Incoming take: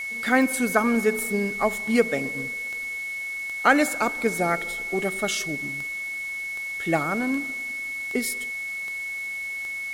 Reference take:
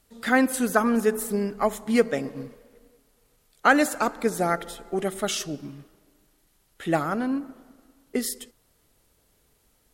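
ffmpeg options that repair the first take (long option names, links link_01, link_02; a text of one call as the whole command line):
ffmpeg -i in.wav -af "adeclick=threshold=4,bandreject=frequency=2200:width=30,afwtdn=0.005" out.wav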